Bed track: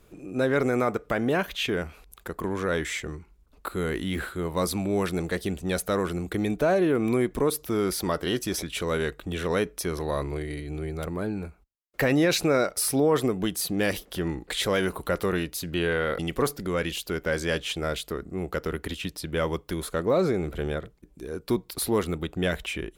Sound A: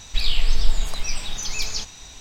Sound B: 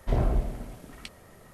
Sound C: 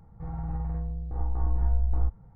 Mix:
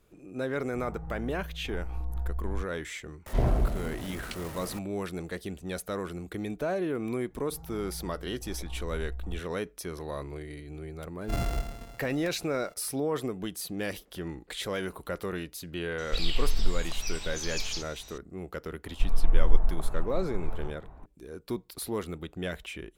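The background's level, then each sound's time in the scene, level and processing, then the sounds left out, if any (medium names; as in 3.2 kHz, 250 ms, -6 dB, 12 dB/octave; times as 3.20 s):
bed track -8 dB
0.54 s: add C -8 dB
3.26 s: add B -0.5 dB + jump at every zero crossing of -39 dBFS
7.30 s: add C -12 dB
11.21 s: add B -5.5 dB + sorted samples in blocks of 64 samples
15.98 s: add A -7.5 dB
18.86 s: add A -2 dB + low-pass 1.2 kHz 24 dB/octave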